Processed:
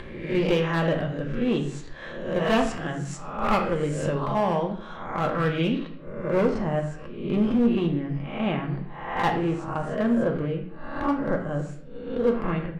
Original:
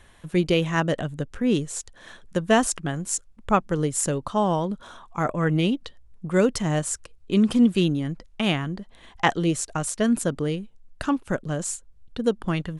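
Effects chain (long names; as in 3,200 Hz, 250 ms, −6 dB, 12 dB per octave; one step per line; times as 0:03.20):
peak hold with a rise ahead of every peak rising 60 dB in 0.64 s
low-pass filter 2,900 Hz 12 dB per octave, from 0:05.78 1,600 Hz
upward compression, threshold −29 dBFS
asymmetric clip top −18 dBFS, bottom −11 dBFS
convolution reverb RT60 0.65 s, pre-delay 4 ms, DRR 1.5 dB
level −3.5 dB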